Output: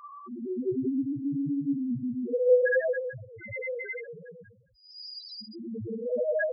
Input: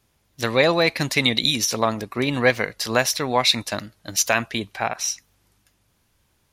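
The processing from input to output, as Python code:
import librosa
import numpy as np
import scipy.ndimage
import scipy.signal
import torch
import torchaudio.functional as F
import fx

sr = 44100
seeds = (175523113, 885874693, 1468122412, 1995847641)

y = fx.paulstretch(x, sr, seeds[0], factor=7.3, window_s=0.1, from_s=2.11)
y = fx.echo_alternate(y, sr, ms=108, hz=1400.0, feedback_pct=55, wet_db=-12)
y = fx.spec_topn(y, sr, count=1)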